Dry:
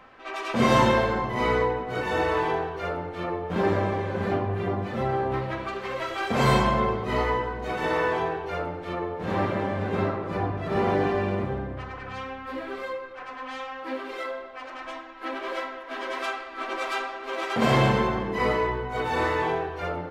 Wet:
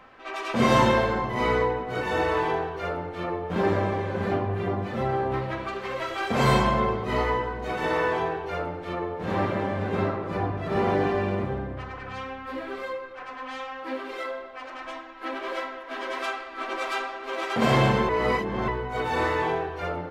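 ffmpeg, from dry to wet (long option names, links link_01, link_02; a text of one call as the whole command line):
ffmpeg -i in.wav -filter_complex "[0:a]asplit=3[link_01][link_02][link_03];[link_01]atrim=end=18.092[link_04];[link_02]atrim=start=18.088:end=18.682,asetpts=PTS-STARTPTS,areverse[link_05];[link_03]atrim=start=18.678[link_06];[link_04][link_05]acrossfade=duration=0.004:curve1=hsin:curve2=hsin[link_07];[link_07][link_06]acrossfade=duration=0.004:curve1=hsin:curve2=hsin" out.wav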